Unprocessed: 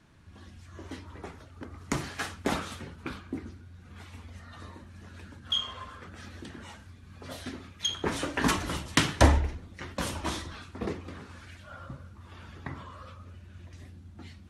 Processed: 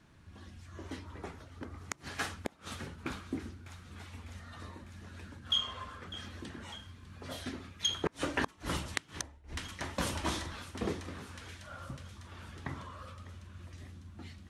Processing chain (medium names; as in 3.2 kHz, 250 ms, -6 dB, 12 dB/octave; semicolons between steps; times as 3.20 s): thinning echo 601 ms, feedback 69%, high-pass 1 kHz, level -15.5 dB; inverted gate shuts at -16 dBFS, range -32 dB; trim -1.5 dB